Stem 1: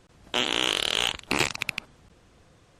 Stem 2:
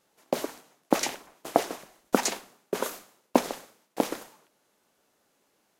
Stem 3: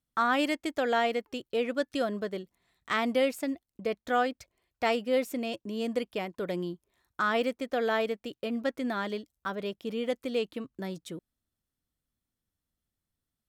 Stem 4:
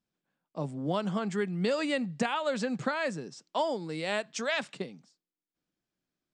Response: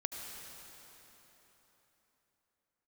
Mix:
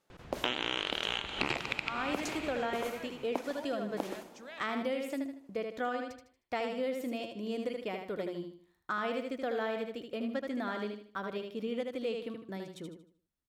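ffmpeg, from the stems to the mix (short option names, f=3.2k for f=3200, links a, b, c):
-filter_complex "[0:a]lowpass=2.6k,aemphasis=mode=production:type=75kf,adelay=100,volume=2.5dB,asplit=2[a][b];[b]volume=-4.5dB[c];[1:a]volume=-7.5dB,asplit=2[d][e];[e]volume=-13dB[f];[2:a]bandreject=f=60:t=h:w=6,bandreject=f=120:t=h:w=6,bandreject=f=180:t=h:w=6,adelay=1700,volume=-4dB,asplit=2[g][h];[h]volume=-5.5dB[i];[3:a]volume=-17dB[j];[4:a]atrim=start_sample=2205[k];[c][f]amix=inputs=2:normalize=0[l];[l][k]afir=irnorm=-1:irlink=0[m];[i]aecho=0:1:77|154|231|308|385:1|0.34|0.116|0.0393|0.0134[n];[a][d][g][j][m][n]amix=inputs=6:normalize=0,highshelf=f=4.9k:g=-5.5,acompressor=threshold=-30dB:ratio=6"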